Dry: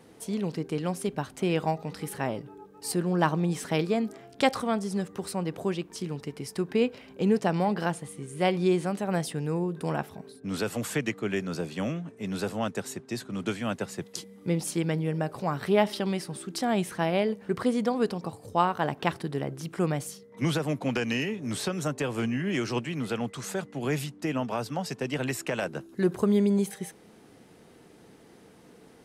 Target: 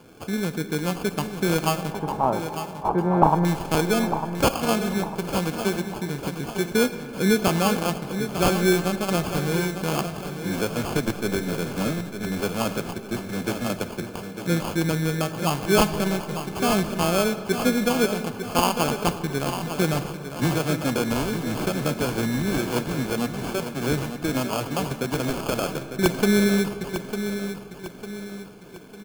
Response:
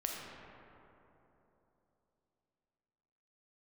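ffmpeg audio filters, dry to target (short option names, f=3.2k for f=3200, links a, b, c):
-filter_complex "[0:a]acrusher=samples=23:mix=1:aa=0.000001,aeval=exprs='(mod(4.73*val(0)+1,2)-1)/4.73':c=same,asettb=1/sr,asplit=3[a][b][c];[a]atrim=end=1.924[d];[b]atrim=start=1.92:end=3.45,asetpts=PTS-STARTPTS,afade=t=in:d=0.004:c=qsin,afade=t=out:st=1.526:d=0.004:c=qsin,lowpass=f=900:t=q:w=4.9[e];[c]atrim=start=3.446[f];[d][e]acrossfade=d=0.004:c1=hsin:c2=qsin[g];[g][f]acrossfade=d=0.004:c1=qsin:c2=hsin,aecho=1:1:901|1802|2703|3604|4505:0.335|0.147|0.0648|0.0285|0.0126,asplit=2[h][i];[1:a]atrim=start_sample=2205,highshelf=f=5k:g=9[j];[i][j]afir=irnorm=-1:irlink=0,volume=-11dB[k];[h][k]amix=inputs=2:normalize=0,volume=2dB"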